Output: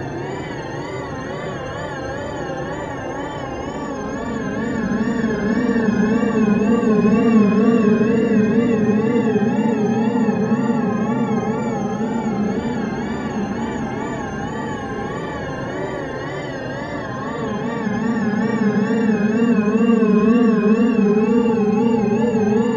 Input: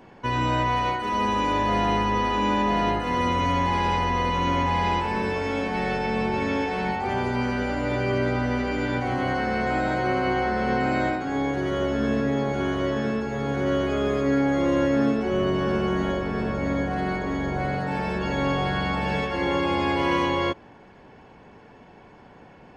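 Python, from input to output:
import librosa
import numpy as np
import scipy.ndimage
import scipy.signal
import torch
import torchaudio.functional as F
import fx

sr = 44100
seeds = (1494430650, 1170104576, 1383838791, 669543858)

p1 = fx.high_shelf(x, sr, hz=6000.0, db=-7.0)
p2 = p1 + fx.room_flutter(p1, sr, wall_m=3.9, rt60_s=0.69, dry=0)
p3 = fx.paulstretch(p2, sr, seeds[0], factor=13.0, window_s=0.05, from_s=11.63)
y = fx.wow_flutter(p3, sr, seeds[1], rate_hz=2.1, depth_cents=92.0)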